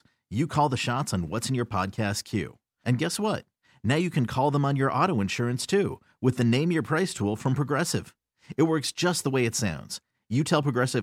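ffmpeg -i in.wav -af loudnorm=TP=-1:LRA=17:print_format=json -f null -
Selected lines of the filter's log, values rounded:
"input_i" : "-26.6",
"input_tp" : "-9.7",
"input_lra" : "3.0",
"input_thresh" : "-36.9",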